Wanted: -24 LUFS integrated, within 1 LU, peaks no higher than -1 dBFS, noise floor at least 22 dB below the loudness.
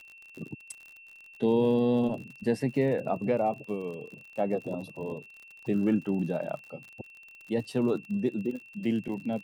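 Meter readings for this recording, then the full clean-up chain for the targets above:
tick rate 50 per s; steady tone 2.7 kHz; tone level -49 dBFS; loudness -30.0 LUFS; peak level -14.5 dBFS; loudness target -24.0 LUFS
-> de-click; band-stop 2.7 kHz, Q 30; trim +6 dB

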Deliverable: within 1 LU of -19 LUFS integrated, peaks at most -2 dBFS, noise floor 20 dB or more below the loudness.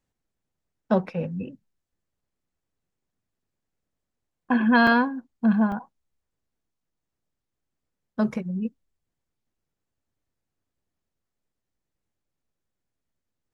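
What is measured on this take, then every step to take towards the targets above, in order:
dropouts 2; longest dropout 2.8 ms; loudness -24.0 LUFS; peak level -8.0 dBFS; loudness target -19.0 LUFS
-> interpolate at 4.87/5.72 s, 2.8 ms; trim +5 dB

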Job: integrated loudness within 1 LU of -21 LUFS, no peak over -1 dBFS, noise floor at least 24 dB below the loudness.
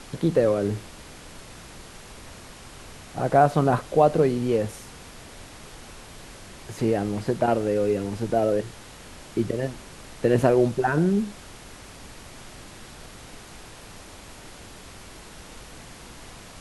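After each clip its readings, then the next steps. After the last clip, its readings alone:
noise floor -45 dBFS; noise floor target -48 dBFS; loudness -23.5 LUFS; peak level -5.0 dBFS; loudness target -21.0 LUFS
-> noise print and reduce 6 dB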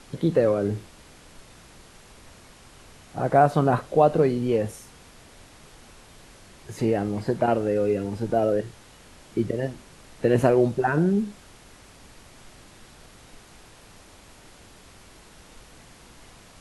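noise floor -51 dBFS; loudness -23.5 LUFS; peak level -5.0 dBFS; loudness target -21.0 LUFS
-> trim +2.5 dB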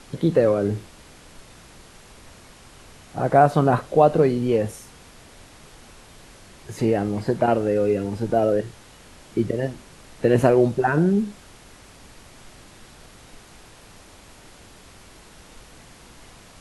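loudness -21.0 LUFS; peak level -2.5 dBFS; noise floor -48 dBFS

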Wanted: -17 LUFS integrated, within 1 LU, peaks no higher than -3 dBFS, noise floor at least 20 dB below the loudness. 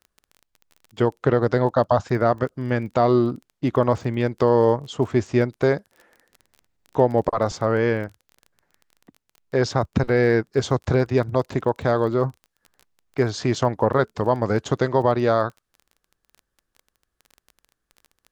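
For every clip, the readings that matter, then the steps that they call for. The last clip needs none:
tick rate 20 per s; loudness -22.0 LUFS; peak level -4.0 dBFS; loudness target -17.0 LUFS
-> de-click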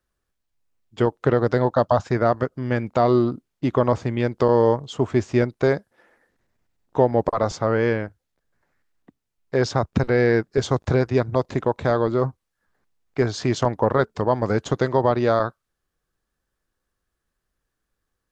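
tick rate 0 per s; loudness -22.0 LUFS; peak level -4.0 dBFS; loudness target -17.0 LUFS
-> trim +5 dB; peak limiter -3 dBFS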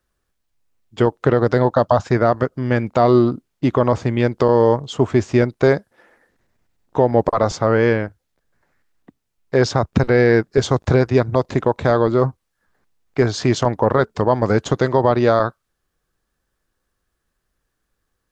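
loudness -17.5 LUFS; peak level -3.0 dBFS; noise floor -75 dBFS

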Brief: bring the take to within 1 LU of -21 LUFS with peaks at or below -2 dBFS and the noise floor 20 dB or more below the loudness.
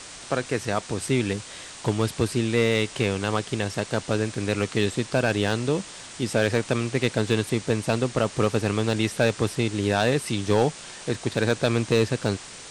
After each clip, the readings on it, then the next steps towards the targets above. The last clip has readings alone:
clipped samples 0.3%; clipping level -11.0 dBFS; noise floor -42 dBFS; noise floor target -45 dBFS; loudness -25.0 LUFS; peak level -11.0 dBFS; loudness target -21.0 LUFS
-> clip repair -11 dBFS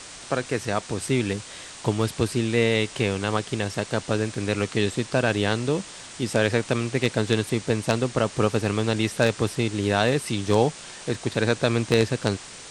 clipped samples 0.0%; noise floor -42 dBFS; noise floor target -45 dBFS
-> noise reduction 6 dB, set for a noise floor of -42 dBFS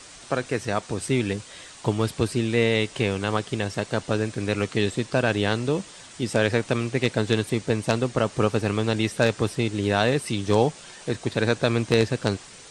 noise floor -45 dBFS; loudness -25.0 LUFS; peak level -2.0 dBFS; loudness target -21.0 LUFS
-> trim +4 dB; peak limiter -2 dBFS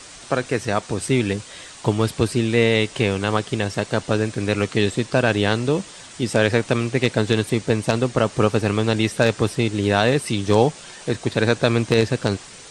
loudness -21.0 LUFS; peak level -2.0 dBFS; noise floor -41 dBFS

